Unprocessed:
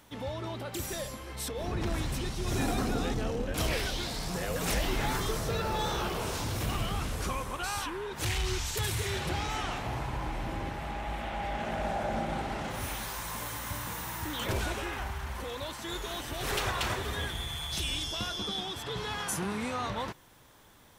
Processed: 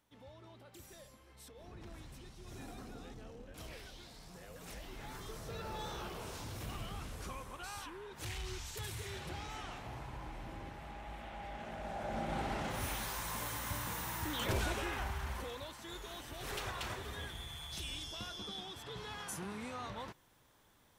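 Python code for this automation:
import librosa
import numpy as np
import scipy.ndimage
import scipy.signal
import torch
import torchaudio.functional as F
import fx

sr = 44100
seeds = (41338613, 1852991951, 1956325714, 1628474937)

y = fx.gain(x, sr, db=fx.line((4.87, -19.0), (5.68, -11.5), (11.82, -11.5), (12.44, -3.0), (15.32, -3.0), (15.73, -10.0)))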